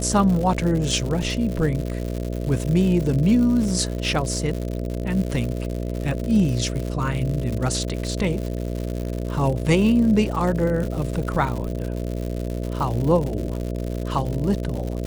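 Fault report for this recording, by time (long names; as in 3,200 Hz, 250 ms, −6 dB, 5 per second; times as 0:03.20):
mains buzz 60 Hz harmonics 11 −27 dBFS
surface crackle 150 per second −27 dBFS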